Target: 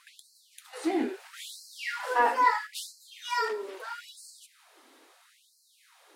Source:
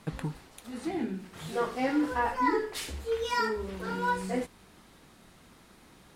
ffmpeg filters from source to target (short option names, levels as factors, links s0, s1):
-filter_complex "[0:a]asettb=1/sr,asplit=3[s0][s1][s2];[s0]atrim=end=0.734[s3];[s1]atrim=start=0.73:end=2.67,asetpts=PTS-STARTPTS,afade=t=in:d=0.004:c=qsin,afade=t=out:st=1.936:d=0.004:c=qsin,acontrast=35[s4];[s2]atrim=start=2.666[s5];[s3][s4]acrossfade=d=0.004:c1=hsin:c2=qsin[s6];[s6][s5]acrossfade=d=0.004:c1=qsin:c2=hsin,asplit=3[s7][s8][s9];[s7]afade=t=out:st=3.46:d=0.02[s10];[s8]aeval=exprs='0.0531*(abs(mod(val(0)/0.0531+3,4)-2)-1)':c=same,afade=t=in:st=3.46:d=0.02,afade=t=out:st=4.02:d=0.02[s11];[s9]afade=t=in:st=4.02:d=0.02[s12];[s10][s11][s12]amix=inputs=3:normalize=0,afftfilt=real='re*gte(b*sr/1024,220*pow(4100/220,0.5+0.5*sin(2*PI*0.76*pts/sr)))':imag='im*gte(b*sr/1024,220*pow(4100/220,0.5+0.5*sin(2*PI*0.76*pts/sr)))':win_size=1024:overlap=0.75"